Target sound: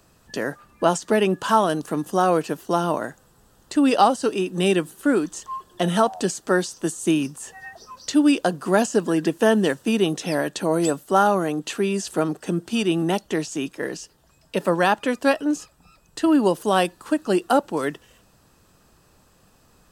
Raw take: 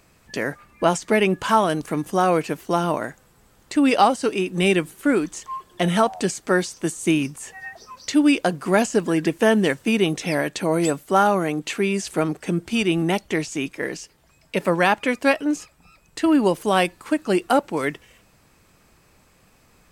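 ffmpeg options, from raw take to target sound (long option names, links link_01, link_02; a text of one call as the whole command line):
ffmpeg -i in.wav -filter_complex "[0:a]equalizer=frequency=2200:width_type=o:width=0.29:gain=-13,acrossover=split=130|3800[link_01][link_02][link_03];[link_01]acompressor=threshold=-52dB:ratio=6[link_04];[link_04][link_02][link_03]amix=inputs=3:normalize=0" out.wav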